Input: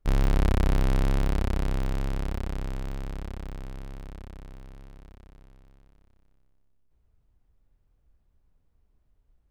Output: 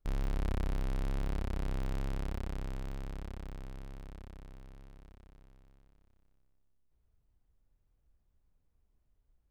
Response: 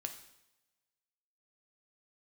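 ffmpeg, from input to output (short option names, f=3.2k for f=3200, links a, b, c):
-af "alimiter=limit=-21dB:level=0:latency=1:release=16,volume=-6.5dB"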